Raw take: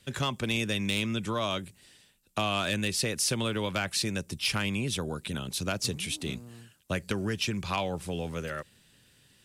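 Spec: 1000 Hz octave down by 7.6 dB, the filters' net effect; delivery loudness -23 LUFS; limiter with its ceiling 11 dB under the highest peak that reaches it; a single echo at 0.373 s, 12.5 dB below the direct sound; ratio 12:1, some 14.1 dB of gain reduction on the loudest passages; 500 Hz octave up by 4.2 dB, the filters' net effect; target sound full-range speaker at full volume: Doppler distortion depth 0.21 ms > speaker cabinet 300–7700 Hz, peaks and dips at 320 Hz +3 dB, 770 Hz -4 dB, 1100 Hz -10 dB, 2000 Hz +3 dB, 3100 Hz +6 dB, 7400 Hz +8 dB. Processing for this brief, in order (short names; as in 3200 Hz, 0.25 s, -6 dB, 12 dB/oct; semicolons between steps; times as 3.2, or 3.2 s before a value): bell 500 Hz +8 dB; bell 1000 Hz -7 dB; compressor 12:1, threshold -38 dBFS; limiter -35 dBFS; echo 0.373 s -12.5 dB; Doppler distortion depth 0.21 ms; speaker cabinet 300–7700 Hz, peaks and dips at 320 Hz +3 dB, 770 Hz -4 dB, 1100 Hz -10 dB, 2000 Hz +3 dB, 3100 Hz +6 dB, 7400 Hz +8 dB; gain +21.5 dB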